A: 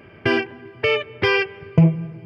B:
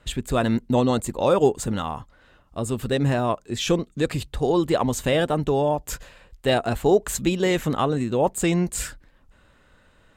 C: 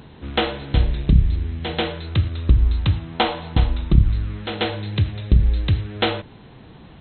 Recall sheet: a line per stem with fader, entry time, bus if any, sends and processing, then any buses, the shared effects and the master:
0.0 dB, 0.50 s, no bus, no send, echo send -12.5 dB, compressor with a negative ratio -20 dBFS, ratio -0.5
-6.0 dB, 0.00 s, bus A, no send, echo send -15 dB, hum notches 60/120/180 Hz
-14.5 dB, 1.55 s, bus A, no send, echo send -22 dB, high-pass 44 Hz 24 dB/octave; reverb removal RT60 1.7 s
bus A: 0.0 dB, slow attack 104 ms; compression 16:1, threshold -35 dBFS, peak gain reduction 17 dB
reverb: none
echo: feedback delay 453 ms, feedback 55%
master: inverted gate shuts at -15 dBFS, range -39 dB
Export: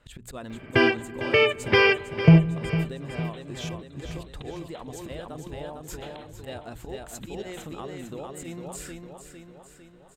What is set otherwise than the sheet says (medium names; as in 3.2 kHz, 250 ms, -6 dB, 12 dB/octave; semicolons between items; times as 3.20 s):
stem A: missing compressor with a negative ratio -20 dBFS, ratio -0.5; stem C: missing high-pass 44 Hz 24 dB/octave; master: missing inverted gate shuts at -15 dBFS, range -39 dB